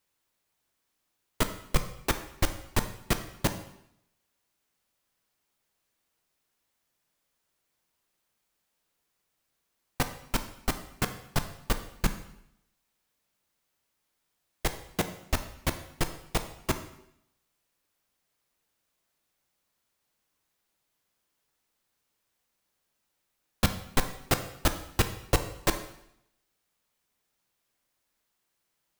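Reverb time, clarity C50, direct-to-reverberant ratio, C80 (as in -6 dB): 0.75 s, 11.0 dB, 8.0 dB, 13.5 dB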